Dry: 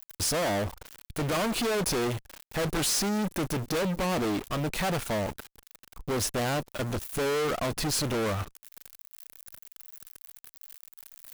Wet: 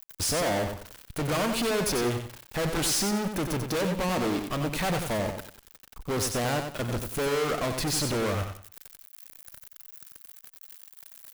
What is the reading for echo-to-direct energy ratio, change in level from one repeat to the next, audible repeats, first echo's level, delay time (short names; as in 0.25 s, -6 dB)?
-6.0 dB, -11.5 dB, 3, -6.5 dB, 92 ms